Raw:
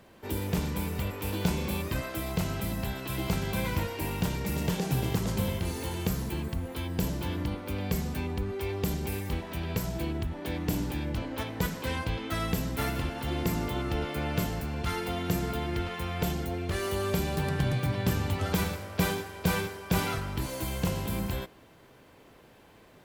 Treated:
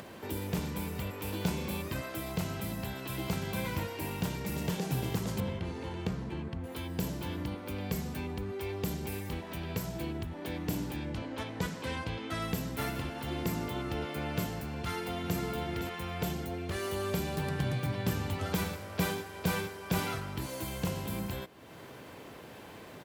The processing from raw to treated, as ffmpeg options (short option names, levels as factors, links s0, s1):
-filter_complex "[0:a]asettb=1/sr,asplit=3[s0][s1][s2];[s0]atrim=end=5.404[s3];[s1]atrim=start=5.4:end=6.64,asetpts=PTS-STARTPTS,afade=t=in:d=0.004:c=qsin,afade=t=out:st=1.236:d=0.004:c=qsin,adynamicsmooth=sensitivity=5.5:basefreq=2700[s4];[s2]atrim=start=6.636[s5];[s3][s4]acrossfade=d=0.004:c1=hsin:c2=qsin[s6];[s6][s5]acrossfade=d=0.004:c1=qsin:c2=hsin,asettb=1/sr,asplit=3[s7][s8][s9];[s7]atrim=end=10.964[s10];[s8]atrim=start=10.96:end=12.42,asetpts=PTS-STARTPTS,afade=t=in:d=0.004:c=qsin,afade=t=out:st=1.456:d=0.004:c=qsin,lowpass=9400[s11];[s9]atrim=start=12.416[s12];[s10][s11]acrossfade=d=0.004:c1=hsin:c2=qsin[s13];[s13][s12]acrossfade=d=0.004:c1=qsin:c2=hsin,asplit=2[s14][s15];[s15]afade=t=in:st=14.71:d=0.01,afade=t=out:st=15.38:d=0.01,aecho=0:1:510|1020|1530:0.398107|0.0995268|0.0248817[s16];[s14][s16]amix=inputs=2:normalize=0,highpass=79,acompressor=mode=upward:threshold=0.0224:ratio=2.5,volume=0.668"